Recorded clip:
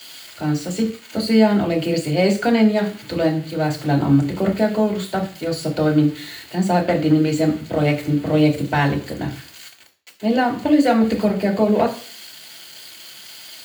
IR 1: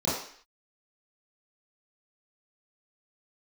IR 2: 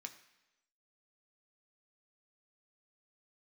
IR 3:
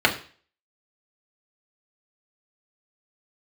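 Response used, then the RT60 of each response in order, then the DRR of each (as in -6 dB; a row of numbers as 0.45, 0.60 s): 3; 0.55, 1.0, 0.40 s; -11.0, 5.0, -1.0 dB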